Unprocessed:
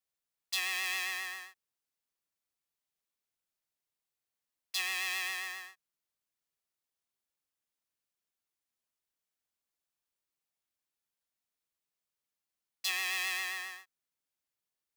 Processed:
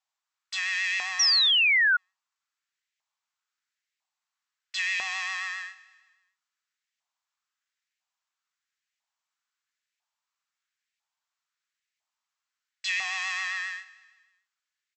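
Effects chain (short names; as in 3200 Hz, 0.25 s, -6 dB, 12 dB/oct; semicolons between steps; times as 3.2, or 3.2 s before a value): soft clip -28.5 dBFS, distortion -12 dB; brick-wall FIR band-pass 560–8100 Hz; LFO high-pass saw up 1 Hz 800–2100 Hz; on a send: feedback echo 0.154 s, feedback 53%, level -19 dB; on the sum: painted sound fall, 1.19–1.97, 1400–5900 Hz -25 dBFS; gain +4 dB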